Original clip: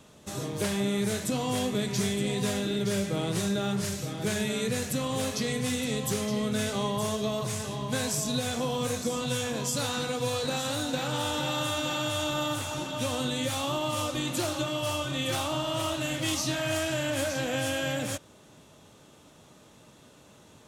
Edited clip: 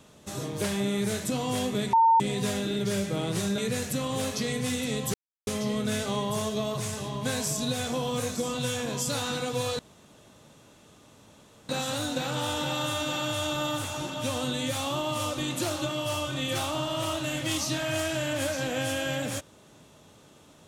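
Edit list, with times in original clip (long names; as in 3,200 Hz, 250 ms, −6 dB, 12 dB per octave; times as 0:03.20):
0:01.93–0:02.20: beep over 908 Hz −16 dBFS
0:03.58–0:04.58: remove
0:06.14: splice in silence 0.33 s
0:10.46: splice in room tone 1.90 s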